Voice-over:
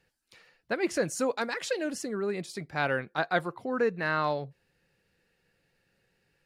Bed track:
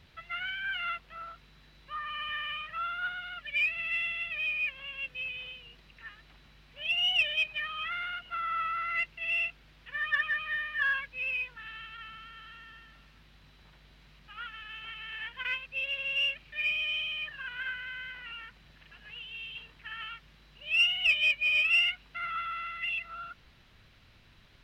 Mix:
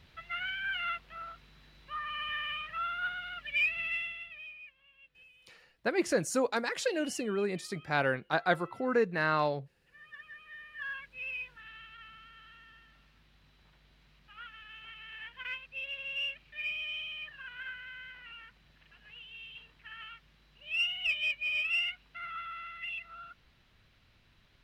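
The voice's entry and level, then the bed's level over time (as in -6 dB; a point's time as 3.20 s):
5.15 s, -0.5 dB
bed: 3.85 s -0.5 dB
4.76 s -22 dB
10.09 s -22 dB
11.22 s -6 dB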